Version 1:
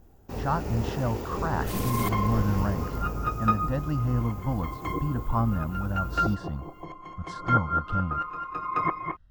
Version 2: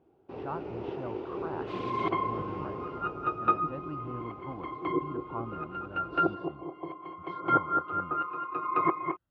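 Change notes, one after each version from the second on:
speech −9.5 dB
first sound −5.0 dB
master: add loudspeaker in its box 170–3,200 Hz, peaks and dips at 210 Hz −8 dB, 360 Hz +9 dB, 1,800 Hz −7 dB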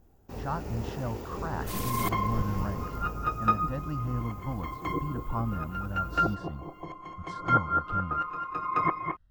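speech +3.5 dB
master: remove loudspeaker in its box 170–3,200 Hz, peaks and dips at 210 Hz −8 dB, 360 Hz +9 dB, 1,800 Hz −7 dB

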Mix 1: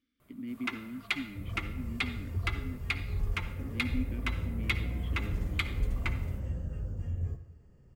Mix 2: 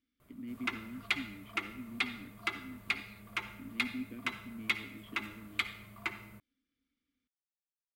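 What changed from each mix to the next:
speech −4.0 dB
second sound: muted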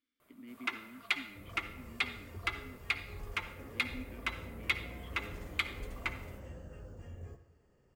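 second sound: unmuted
master: add bass and treble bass −14 dB, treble −1 dB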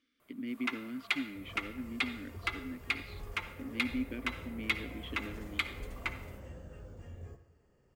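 speech +11.5 dB

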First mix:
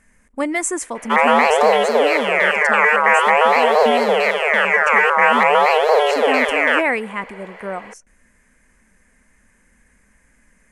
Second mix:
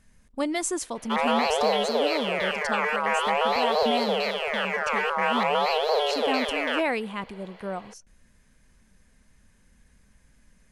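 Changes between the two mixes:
background −4.0 dB
master: add octave-band graphic EQ 125/250/500/1,000/2,000/4,000/8,000 Hz +5/−5/−4/−4/−12/+10/−9 dB

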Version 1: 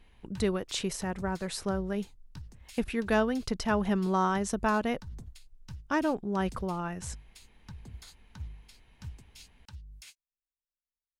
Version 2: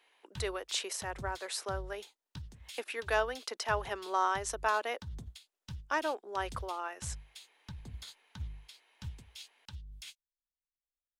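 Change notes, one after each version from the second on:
speech: add Bessel high-pass filter 610 Hz, order 8
background: add parametric band 3,400 Hz +8.5 dB 0.48 octaves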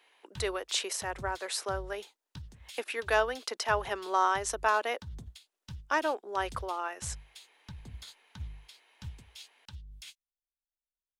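speech +3.5 dB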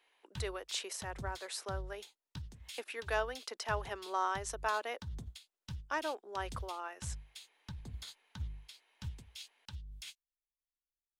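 speech −7.5 dB

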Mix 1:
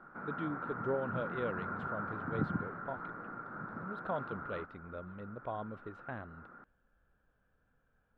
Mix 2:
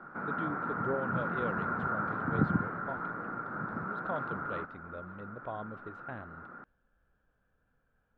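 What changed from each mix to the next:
background +6.5 dB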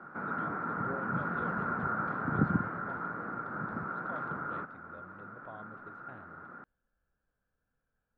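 speech −8.5 dB

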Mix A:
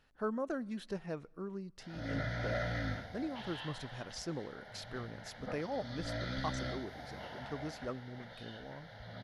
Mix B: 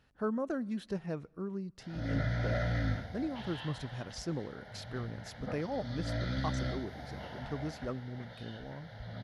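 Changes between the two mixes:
speech: add high-pass filter 50 Hz
master: add low-shelf EQ 250 Hz +8 dB

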